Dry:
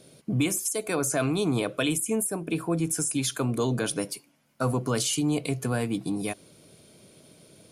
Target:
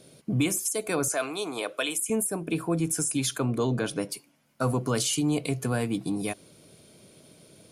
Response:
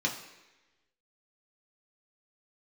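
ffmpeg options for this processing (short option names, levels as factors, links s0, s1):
-filter_complex "[0:a]asettb=1/sr,asplit=3[s0][s1][s2];[s0]atrim=end=1.084[s3];[s1]atrim=start=1.08:end=2.1,asetpts=PTS-STARTPTS,afade=t=in:d=0.004:c=qsin,afade=t=out:st=1.016:d=0.004:c=qsin,highpass=500[s4];[s2]atrim=start=2.096[s5];[s3][s4]acrossfade=d=0.004:c1=hsin:c2=qsin[s6];[s6][s5]acrossfade=d=0.004:c1=qsin:c2=hsin,asettb=1/sr,asplit=3[s7][s8][s9];[s7]atrim=end=3.384[s10];[s8]atrim=start=3.38:end=4.12,asetpts=PTS-STARTPTS,afade=t=in:d=0.004:c=qsin,afade=t=out:st=0.736:d=0.004:c=qsin,highshelf=f=5900:g=-11[s11];[s9]atrim=start=4.116[s12];[s10][s11]acrossfade=d=0.004:c1=hsin:c2=qsin[s13];[s13][s12]acrossfade=d=0.004:c1=qsin:c2=hsin"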